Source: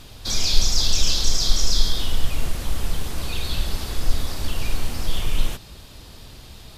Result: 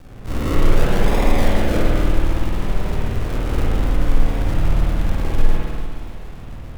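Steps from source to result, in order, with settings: octaver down 1 oct, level 0 dB; low-pass opened by the level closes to 2000 Hz, open at -13 dBFS; in parallel at -3.5 dB: soft clip -19 dBFS, distortion -7 dB; on the sum: decimation with a swept rate 42×, swing 60% 0.62 Hz; vibrato 1.4 Hz 16 cents; on a send: split-band echo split 2500 Hz, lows 0.184 s, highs 0.292 s, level -7.5 dB; on the sum: spring tank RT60 1.4 s, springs 53 ms, chirp 70 ms, DRR -4 dB; gain -4 dB

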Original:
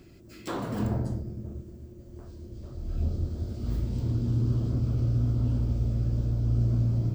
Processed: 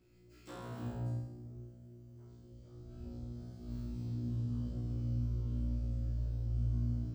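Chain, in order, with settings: resonator 60 Hz, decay 1 s, harmonics all, mix 100%

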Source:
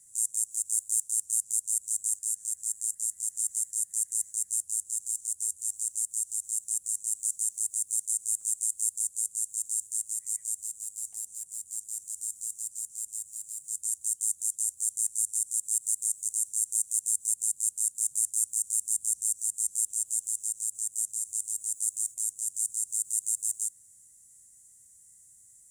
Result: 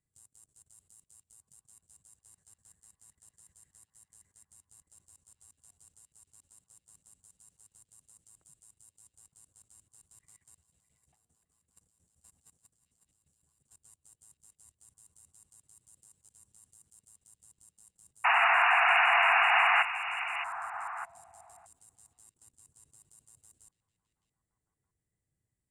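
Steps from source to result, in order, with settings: high shelf 2600 Hz -2 dB; level quantiser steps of 18 dB; painted sound noise, 18.24–19.83, 660–2900 Hz -27 dBFS; air absorption 440 m; delay with a stepping band-pass 0.612 s, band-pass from 2800 Hz, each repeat -1.4 oct, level -8 dB; gain +7 dB

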